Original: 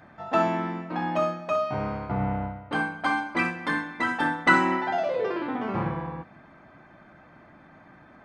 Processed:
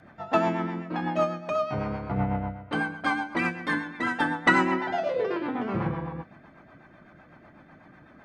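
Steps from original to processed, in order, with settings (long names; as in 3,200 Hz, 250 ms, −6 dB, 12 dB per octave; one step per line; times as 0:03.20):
rotating-speaker cabinet horn 8 Hz
level +2 dB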